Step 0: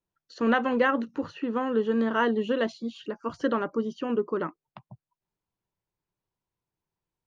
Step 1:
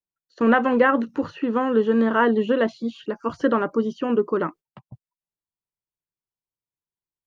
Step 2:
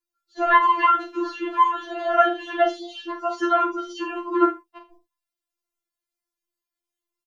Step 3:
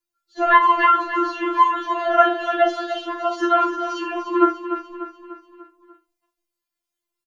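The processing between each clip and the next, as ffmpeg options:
ffmpeg -i in.wav -filter_complex "[0:a]agate=range=-19dB:threshold=-46dB:ratio=16:detection=peak,acrossover=split=2600[link_01][link_02];[link_02]acompressor=threshold=-53dB:ratio=4:attack=1:release=60[link_03];[link_01][link_03]amix=inputs=2:normalize=0,volume=6dB" out.wav
ffmpeg -i in.wav -filter_complex "[0:a]asplit=2[link_01][link_02];[link_02]adelay=40,volume=-7.5dB[link_03];[link_01][link_03]amix=inputs=2:normalize=0,asplit=2[link_04][link_05];[link_05]aecho=0:1:46|77:0.188|0.15[link_06];[link_04][link_06]amix=inputs=2:normalize=0,afftfilt=real='re*4*eq(mod(b,16),0)':imag='im*4*eq(mod(b,16),0)':win_size=2048:overlap=0.75,volume=7.5dB" out.wav
ffmpeg -i in.wav -af "aecho=1:1:295|590|885|1180|1475:0.316|0.158|0.0791|0.0395|0.0198,volume=2.5dB" out.wav

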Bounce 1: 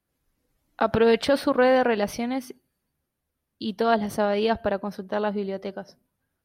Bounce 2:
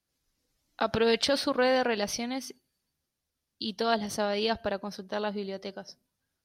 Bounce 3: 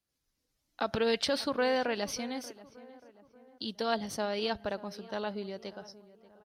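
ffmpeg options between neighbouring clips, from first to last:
ffmpeg -i in.wav -af "equalizer=frequency=5300:width_type=o:width=1.7:gain=13,volume=-6.5dB" out.wav
ffmpeg -i in.wav -filter_complex "[0:a]asplit=2[link_01][link_02];[link_02]adelay=584,lowpass=frequency=1800:poles=1,volume=-18dB,asplit=2[link_03][link_04];[link_04]adelay=584,lowpass=frequency=1800:poles=1,volume=0.49,asplit=2[link_05][link_06];[link_06]adelay=584,lowpass=frequency=1800:poles=1,volume=0.49,asplit=2[link_07][link_08];[link_08]adelay=584,lowpass=frequency=1800:poles=1,volume=0.49[link_09];[link_01][link_03][link_05][link_07][link_09]amix=inputs=5:normalize=0,volume=-4dB" out.wav

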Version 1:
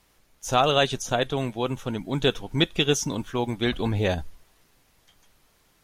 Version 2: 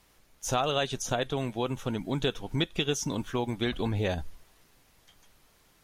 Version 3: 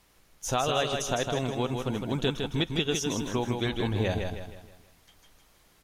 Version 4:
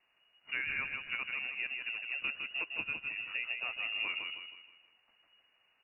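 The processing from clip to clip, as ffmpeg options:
ffmpeg -i in.wav -af "acompressor=threshold=-27dB:ratio=2.5" out.wav
ffmpeg -i in.wav -af "aecho=1:1:158|316|474|632|790:0.562|0.236|0.0992|0.0417|0.0175" out.wav
ffmpeg -i in.wav -af "lowpass=frequency=2500:width_type=q:width=0.5098,lowpass=frequency=2500:width_type=q:width=0.6013,lowpass=frequency=2500:width_type=q:width=0.9,lowpass=frequency=2500:width_type=q:width=2.563,afreqshift=-2900,volume=-9dB" out.wav

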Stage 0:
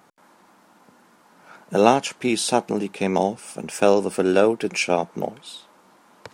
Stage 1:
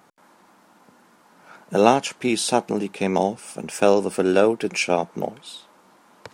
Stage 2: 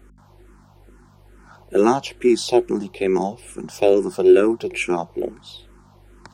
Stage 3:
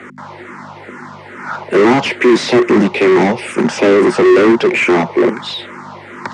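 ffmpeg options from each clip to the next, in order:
ffmpeg -i in.wav -af anull out.wav
ffmpeg -i in.wav -filter_complex "[0:a]aeval=exprs='val(0)+0.00501*(sin(2*PI*50*n/s)+sin(2*PI*2*50*n/s)/2+sin(2*PI*3*50*n/s)/3+sin(2*PI*4*50*n/s)/4+sin(2*PI*5*50*n/s)/5)':channel_layout=same,equalizer=frequency=360:width_type=o:width=0.24:gain=14,asplit=2[link_01][link_02];[link_02]afreqshift=-2.3[link_03];[link_01][link_03]amix=inputs=2:normalize=1" out.wav
ffmpeg -i in.wav -filter_complex "[0:a]acrossover=split=210|380|3900[link_01][link_02][link_03][link_04];[link_02]acrusher=bits=5:mix=0:aa=0.000001[link_05];[link_01][link_05][link_03][link_04]amix=inputs=4:normalize=0,asplit=2[link_06][link_07];[link_07]highpass=frequency=720:poles=1,volume=36dB,asoftclip=type=tanh:threshold=-3.5dB[link_08];[link_06][link_08]amix=inputs=2:normalize=0,lowpass=frequency=1000:poles=1,volume=-6dB,highpass=frequency=110:width=0.5412,highpass=frequency=110:width=1.3066,equalizer=frequency=240:width_type=q:width=4:gain=7,equalizer=frequency=730:width_type=q:width=4:gain=-6,equalizer=frequency=2000:width_type=q:width=4:gain=9,lowpass=frequency=8600:width=0.5412,lowpass=frequency=8600:width=1.3066,volume=1.5dB" out.wav

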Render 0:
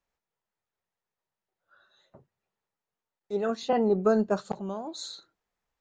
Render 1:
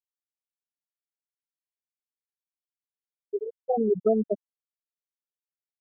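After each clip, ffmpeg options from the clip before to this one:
ffmpeg -i in.wav -af "afftfilt=real='re*gte(hypot(re,im),0.398)':imag='im*gte(hypot(re,im),0.398)':win_size=1024:overlap=0.75,volume=1.5dB" out.wav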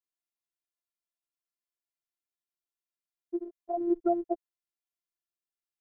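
ffmpeg -i in.wav -af "afftfilt=real='hypot(re,im)*cos(PI*b)':imag='0':win_size=512:overlap=0.75" out.wav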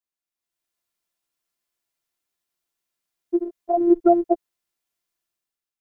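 ffmpeg -i in.wav -af "dynaudnorm=framelen=150:gausssize=7:maxgain=11.5dB" out.wav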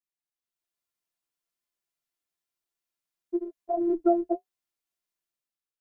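ffmpeg -i in.wav -af "flanger=delay=4.8:depth=7.7:regen=-42:speed=0.59:shape=sinusoidal,volume=-3dB" out.wav

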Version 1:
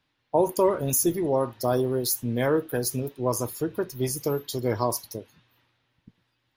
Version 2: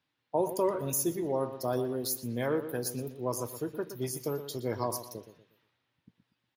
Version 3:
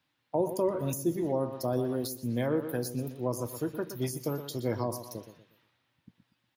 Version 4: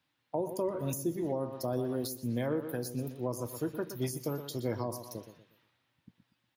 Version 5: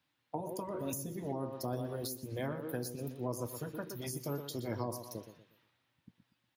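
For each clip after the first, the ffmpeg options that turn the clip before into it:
ffmpeg -i in.wav -filter_complex "[0:a]highpass=94,asplit=2[link_01][link_02];[link_02]adelay=120,lowpass=frequency=3800:poles=1,volume=-11dB,asplit=2[link_03][link_04];[link_04]adelay=120,lowpass=frequency=3800:poles=1,volume=0.36,asplit=2[link_05][link_06];[link_06]adelay=120,lowpass=frequency=3800:poles=1,volume=0.36,asplit=2[link_07][link_08];[link_08]adelay=120,lowpass=frequency=3800:poles=1,volume=0.36[link_09];[link_03][link_05][link_07][link_09]amix=inputs=4:normalize=0[link_10];[link_01][link_10]amix=inputs=2:normalize=0,volume=-7dB" out.wav
ffmpeg -i in.wav -filter_complex "[0:a]equalizer=frequency=420:width=6.5:gain=-7.5,acrossover=split=600[link_01][link_02];[link_02]acompressor=threshold=-42dB:ratio=6[link_03];[link_01][link_03]amix=inputs=2:normalize=0,volume=4dB" out.wav
ffmpeg -i in.wav -af "alimiter=limit=-21dB:level=0:latency=1:release=292,volume=-1.5dB" out.wav
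ffmpeg -i in.wav -af "afftfilt=real='re*lt(hypot(re,im),0.178)':imag='im*lt(hypot(re,im),0.178)':win_size=1024:overlap=0.75,volume=-1.5dB" out.wav

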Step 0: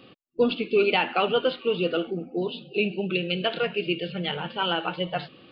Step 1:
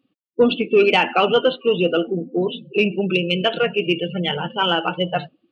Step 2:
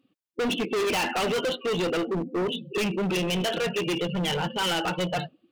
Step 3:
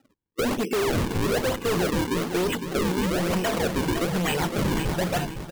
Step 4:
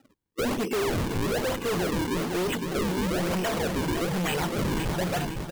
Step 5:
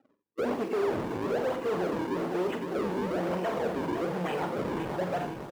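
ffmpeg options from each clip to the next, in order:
ffmpeg -i in.wav -af "afftdn=noise_reduction=31:noise_floor=-35,acontrast=86" out.wav
ffmpeg -i in.wav -af "volume=24dB,asoftclip=hard,volume=-24dB" out.wav
ffmpeg -i in.wav -af "acompressor=threshold=-27dB:ratio=6,acrusher=samples=39:mix=1:aa=0.000001:lfo=1:lforange=62.4:lforate=1.1,aecho=1:1:509|1018|1527:0.398|0.0955|0.0229,volume=4dB" out.wav
ffmpeg -i in.wav -af "asoftclip=type=tanh:threshold=-27dB,volume=2.5dB" out.wav
ffmpeg -i in.wav -filter_complex "[0:a]bandpass=frequency=590:width_type=q:width=0.68:csg=0,asplit=2[link_01][link_02];[link_02]acrusher=bits=6:mix=0:aa=0.000001,volume=-10dB[link_03];[link_01][link_03]amix=inputs=2:normalize=0,aecho=1:1:45|87:0.355|0.251,volume=-3dB" out.wav

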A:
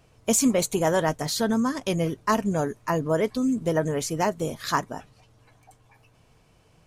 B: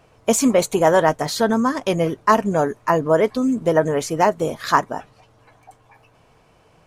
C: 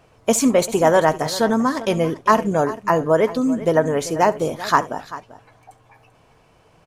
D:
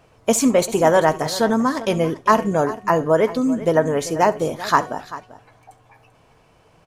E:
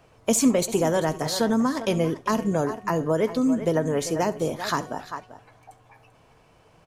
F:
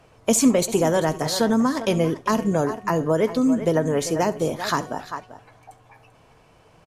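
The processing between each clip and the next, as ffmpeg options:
ffmpeg -i in.wav -af "equalizer=frequency=860:width=0.35:gain=9" out.wav
ffmpeg -i in.wav -af "aecho=1:1:68|391:0.106|0.158" out.wav
ffmpeg -i in.wav -af "bandreject=frequency=368.2:width_type=h:width=4,bandreject=frequency=736.4:width_type=h:width=4,bandreject=frequency=1104.6:width_type=h:width=4,bandreject=frequency=1472.8:width_type=h:width=4,bandreject=frequency=1841:width_type=h:width=4,bandreject=frequency=2209.2:width_type=h:width=4,bandreject=frequency=2577.4:width_type=h:width=4,bandreject=frequency=2945.6:width_type=h:width=4,bandreject=frequency=3313.8:width_type=h:width=4,bandreject=frequency=3682:width_type=h:width=4,bandreject=frequency=4050.2:width_type=h:width=4,bandreject=frequency=4418.4:width_type=h:width=4,bandreject=frequency=4786.6:width_type=h:width=4,bandreject=frequency=5154.8:width_type=h:width=4,bandreject=frequency=5523:width_type=h:width=4,bandreject=frequency=5891.2:width_type=h:width=4,bandreject=frequency=6259.4:width_type=h:width=4,bandreject=frequency=6627.6:width_type=h:width=4,bandreject=frequency=6995.8:width_type=h:width=4,bandreject=frequency=7364:width_type=h:width=4,bandreject=frequency=7732.2:width_type=h:width=4,bandreject=frequency=8100.4:width_type=h:width=4" out.wav
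ffmpeg -i in.wav -filter_complex "[0:a]acrossover=split=390|3000[link_01][link_02][link_03];[link_02]acompressor=threshold=-23dB:ratio=6[link_04];[link_01][link_04][link_03]amix=inputs=3:normalize=0,volume=-2dB" out.wav
ffmpeg -i in.wav -af "aresample=32000,aresample=44100,volume=2.5dB" out.wav

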